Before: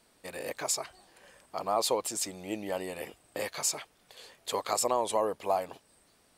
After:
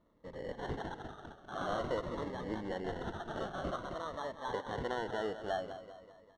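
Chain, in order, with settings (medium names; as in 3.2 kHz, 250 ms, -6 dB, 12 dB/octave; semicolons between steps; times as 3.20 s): treble shelf 4.7 kHz -8 dB; in parallel at +1 dB: peak limiter -22.5 dBFS, peak gain reduction 7.5 dB; on the sum: ever faster or slower copies 326 ms, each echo +5 st, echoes 3; feedback delay 198 ms, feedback 52%, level -11.5 dB; sample-and-hold 18×; tape spacing loss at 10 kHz 30 dB; Shepard-style phaser falling 0.49 Hz; trim -7.5 dB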